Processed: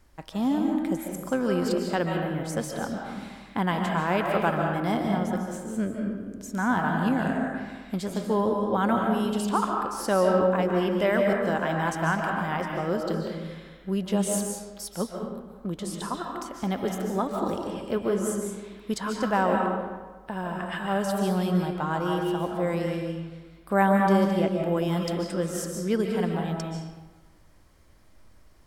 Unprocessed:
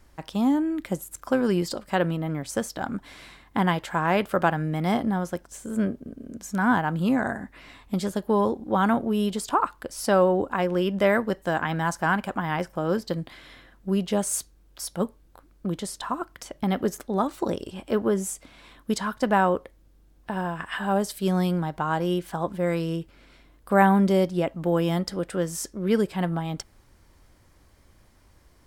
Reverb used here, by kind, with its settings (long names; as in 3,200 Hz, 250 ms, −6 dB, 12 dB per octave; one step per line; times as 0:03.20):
comb and all-pass reverb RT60 1.3 s, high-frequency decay 0.65×, pre-delay 105 ms, DRR 1 dB
level −3.5 dB